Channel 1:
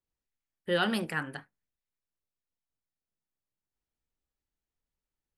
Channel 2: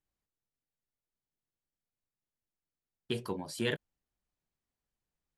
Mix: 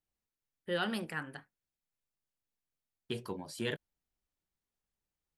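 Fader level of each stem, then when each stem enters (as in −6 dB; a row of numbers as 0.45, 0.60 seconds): −6.0, −3.5 decibels; 0.00, 0.00 seconds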